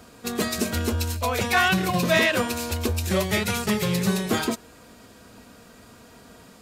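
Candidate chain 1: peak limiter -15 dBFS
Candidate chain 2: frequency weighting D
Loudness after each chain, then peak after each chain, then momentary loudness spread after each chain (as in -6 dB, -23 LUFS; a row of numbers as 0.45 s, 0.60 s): -25.5 LUFS, -18.0 LUFS; -15.0 dBFS, -1.0 dBFS; 5 LU, 10 LU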